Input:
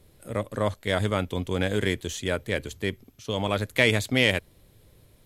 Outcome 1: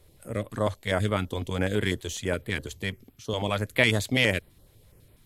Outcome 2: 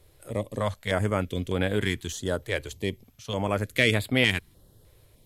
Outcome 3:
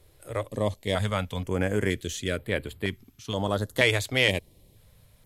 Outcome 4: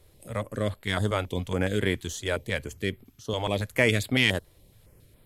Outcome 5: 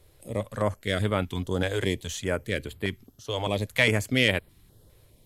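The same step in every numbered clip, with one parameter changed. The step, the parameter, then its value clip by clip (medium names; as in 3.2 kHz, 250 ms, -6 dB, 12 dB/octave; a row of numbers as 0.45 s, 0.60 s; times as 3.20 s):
step-sequenced notch, rate: 12 Hz, 3.3 Hz, 2.1 Hz, 7.2 Hz, 4.9 Hz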